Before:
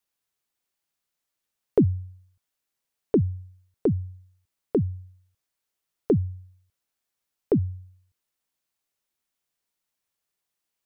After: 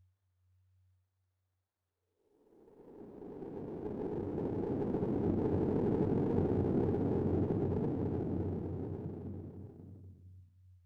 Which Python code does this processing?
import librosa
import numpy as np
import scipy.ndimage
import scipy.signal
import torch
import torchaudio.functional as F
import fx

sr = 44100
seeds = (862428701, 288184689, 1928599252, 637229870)

y = scipy.signal.sosfilt(scipy.signal.butter(2, 95.0, 'highpass', fs=sr, output='sos'), x)
y = fx.paulstretch(y, sr, seeds[0], factor=8.2, window_s=1.0, from_s=5.35)
y = fx.running_max(y, sr, window=17)
y = y * librosa.db_to_amplitude(-6.0)